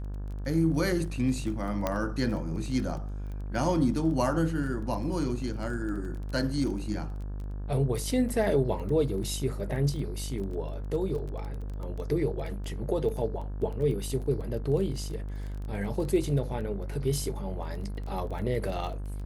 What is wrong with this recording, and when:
buzz 50 Hz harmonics 35 -35 dBFS
crackle 16/s -36 dBFS
1.87 pop -14 dBFS

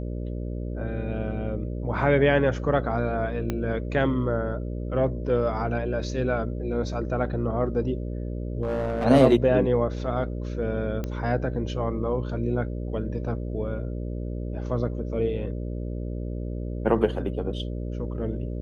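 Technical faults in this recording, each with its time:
buzz 60 Hz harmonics 10 -31 dBFS
3.5 pop -14 dBFS
8.62–9.06 clipped -23 dBFS
11.04 pop -18 dBFS

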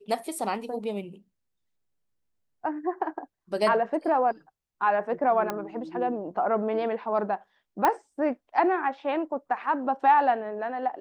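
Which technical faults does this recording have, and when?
5.5 pop -15 dBFS
7.85 pop -9 dBFS

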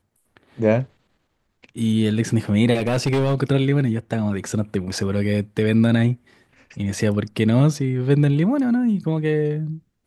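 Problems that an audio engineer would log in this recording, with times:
2.74–3.35 clipped -15.5 dBFS

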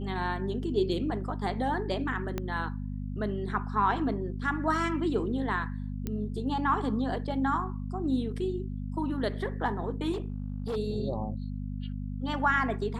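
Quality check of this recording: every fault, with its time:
hum 50 Hz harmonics 5 -35 dBFS
2.38 pop -18 dBFS
6.07 pop -20 dBFS
10.12–10.77 clipped -28.5 dBFS

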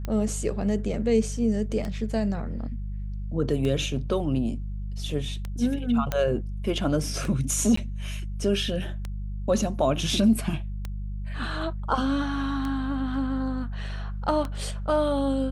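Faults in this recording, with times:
hum 50 Hz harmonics 4 -32 dBFS
tick 33 1/3 rpm -18 dBFS
6.12 pop -12 dBFS
7.76–7.77 gap 14 ms

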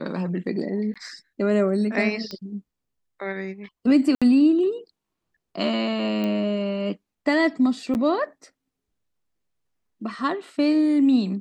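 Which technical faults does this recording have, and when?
0.94–0.96 gap 16 ms
2.31 pop -20 dBFS
4.15–4.22 gap 66 ms
6.24 pop -16 dBFS
7.94–7.95 gap 9.6 ms

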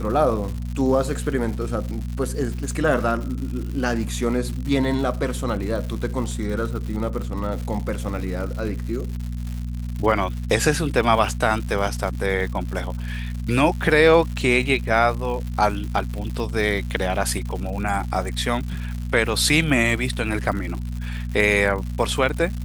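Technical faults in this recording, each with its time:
crackle 190/s -30 dBFS
hum 60 Hz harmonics 4 -28 dBFS

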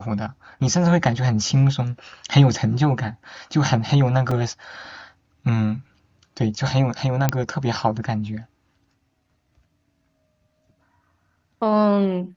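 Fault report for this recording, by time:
4.31 gap 3.9 ms
7.29 pop -4 dBFS

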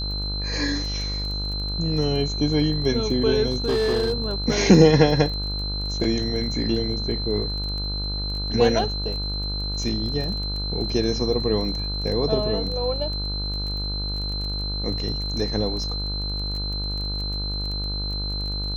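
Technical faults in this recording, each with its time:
buzz 50 Hz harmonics 31 -29 dBFS
crackle 19/s -30 dBFS
tone 4100 Hz -29 dBFS
3.51–4.34 clipped -17.5 dBFS

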